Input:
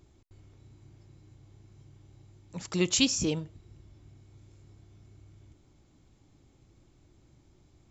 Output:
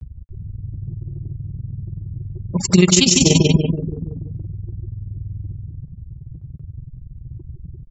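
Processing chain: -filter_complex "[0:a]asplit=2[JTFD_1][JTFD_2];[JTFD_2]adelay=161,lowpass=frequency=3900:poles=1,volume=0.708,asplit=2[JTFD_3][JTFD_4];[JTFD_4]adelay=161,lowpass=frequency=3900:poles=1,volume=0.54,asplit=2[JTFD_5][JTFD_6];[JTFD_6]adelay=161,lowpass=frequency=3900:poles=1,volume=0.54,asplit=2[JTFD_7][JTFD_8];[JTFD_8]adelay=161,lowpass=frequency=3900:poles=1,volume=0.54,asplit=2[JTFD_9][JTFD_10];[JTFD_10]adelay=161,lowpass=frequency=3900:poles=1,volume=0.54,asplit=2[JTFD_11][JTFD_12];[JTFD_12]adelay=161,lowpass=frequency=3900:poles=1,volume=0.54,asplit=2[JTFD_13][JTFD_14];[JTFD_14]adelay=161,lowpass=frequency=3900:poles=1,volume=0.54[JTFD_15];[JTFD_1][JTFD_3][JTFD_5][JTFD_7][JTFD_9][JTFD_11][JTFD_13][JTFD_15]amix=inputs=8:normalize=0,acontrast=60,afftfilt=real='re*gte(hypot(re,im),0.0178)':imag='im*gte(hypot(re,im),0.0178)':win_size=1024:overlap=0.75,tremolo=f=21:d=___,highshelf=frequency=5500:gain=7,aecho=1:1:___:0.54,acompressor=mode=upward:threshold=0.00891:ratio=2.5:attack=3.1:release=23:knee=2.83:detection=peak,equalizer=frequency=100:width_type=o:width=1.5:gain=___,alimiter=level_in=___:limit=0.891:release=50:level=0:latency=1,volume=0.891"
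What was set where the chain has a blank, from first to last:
0.857, 5, 8.5, 4.47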